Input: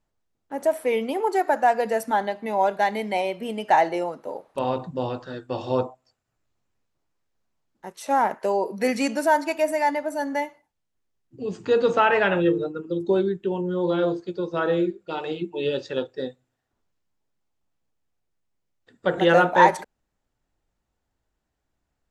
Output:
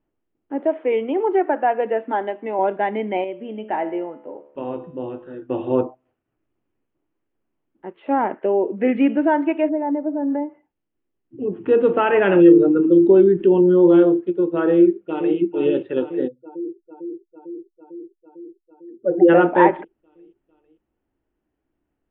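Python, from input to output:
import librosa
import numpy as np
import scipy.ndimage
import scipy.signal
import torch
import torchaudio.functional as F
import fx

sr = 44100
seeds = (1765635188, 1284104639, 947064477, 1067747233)

y = fx.highpass(x, sr, hz=290.0, slope=12, at=(0.6, 2.59))
y = fx.comb_fb(y, sr, f0_hz=72.0, decay_s=0.79, harmonics='all', damping=0.0, mix_pct=60, at=(3.24, 5.42))
y = fx.peak_eq(y, sr, hz=1000.0, db=-6.5, octaves=0.33, at=(8.34, 9.18))
y = fx.env_lowpass_down(y, sr, base_hz=730.0, full_db=-23.5, at=(9.68, 11.55), fade=0.02)
y = fx.env_flatten(y, sr, amount_pct=50, at=(12.14, 14.03))
y = fx.echo_throw(y, sr, start_s=14.75, length_s=0.62, ms=450, feedback_pct=75, wet_db=-9.5)
y = fx.spec_expand(y, sr, power=2.6, at=(16.27, 19.28), fade=0.02)
y = scipy.signal.sosfilt(scipy.signal.butter(12, 3200.0, 'lowpass', fs=sr, output='sos'), y)
y = fx.peak_eq(y, sr, hz=320.0, db=14.0, octaves=0.95)
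y = y * 10.0 ** (-2.0 / 20.0)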